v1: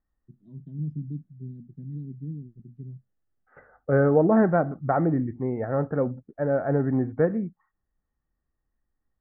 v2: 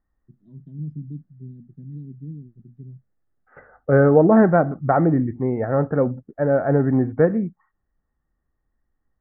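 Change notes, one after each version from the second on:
second voice +5.5 dB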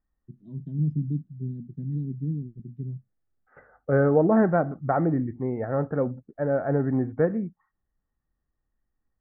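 first voice +6.0 dB; second voice -6.0 dB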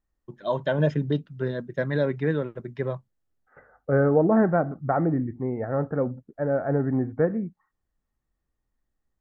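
first voice: remove inverse Chebyshev low-pass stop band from 520 Hz, stop band 40 dB

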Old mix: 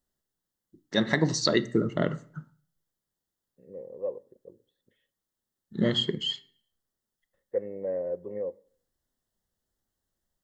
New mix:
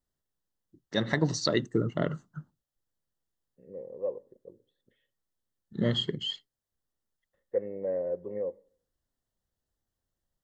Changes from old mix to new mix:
first voice: send off; master: add treble shelf 5.8 kHz -4.5 dB

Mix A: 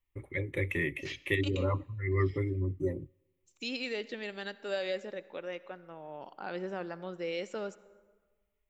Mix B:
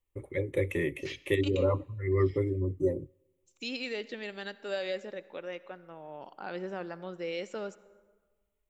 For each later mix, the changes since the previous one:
first voice: add ten-band graphic EQ 500 Hz +8 dB, 2 kHz -5 dB, 8 kHz +6 dB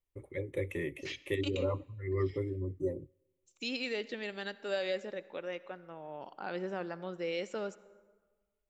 first voice -6.0 dB

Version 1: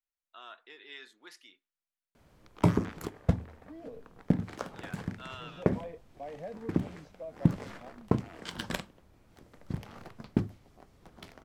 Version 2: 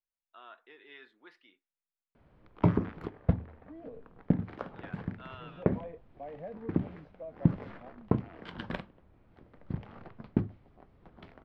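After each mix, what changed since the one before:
master: add distance through air 390 m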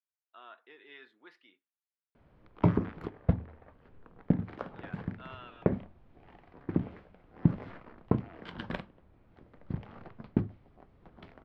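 second voice: muted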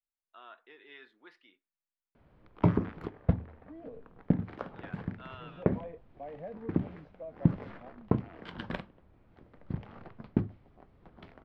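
second voice: unmuted

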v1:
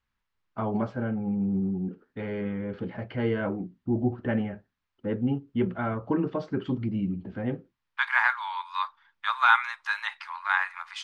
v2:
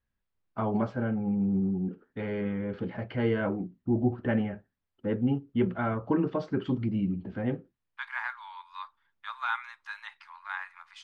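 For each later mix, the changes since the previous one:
second voice -11.5 dB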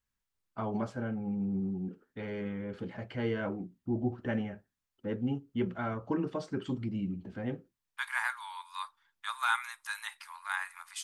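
first voice -6.0 dB; master: remove distance through air 220 m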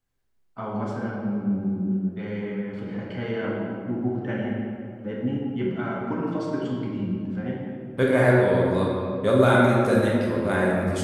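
second voice: remove steep high-pass 870 Hz 72 dB/octave; reverb: on, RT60 2.4 s

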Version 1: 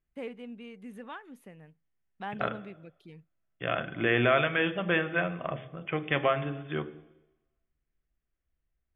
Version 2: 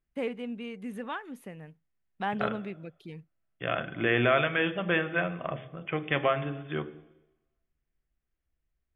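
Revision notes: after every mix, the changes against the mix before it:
first voice +6.5 dB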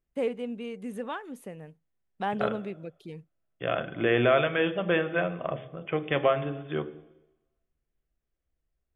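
master: add graphic EQ 500/2000/8000 Hz +5/-3/+6 dB

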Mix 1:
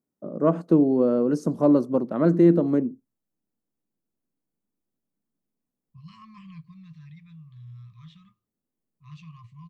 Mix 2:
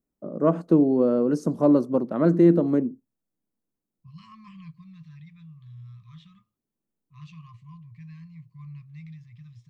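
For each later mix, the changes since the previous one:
second voice: entry -1.90 s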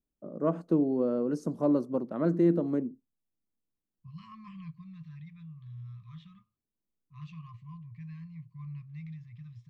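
first voice -7.5 dB; second voice: add low-pass 2.7 kHz 6 dB/octave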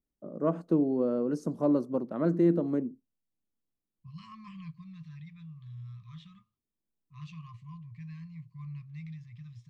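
second voice: remove low-pass 2.7 kHz 6 dB/octave

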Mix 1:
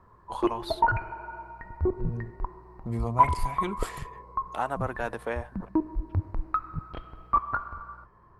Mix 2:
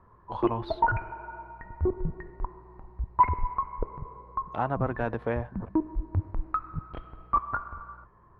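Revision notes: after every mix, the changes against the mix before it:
first voice: remove high-pass 500 Hz 6 dB/octave; second voice: muted; master: add distance through air 260 m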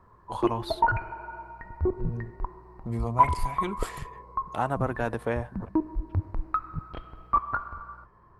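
second voice: unmuted; master: remove distance through air 260 m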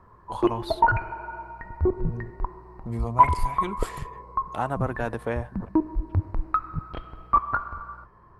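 background +3.5 dB

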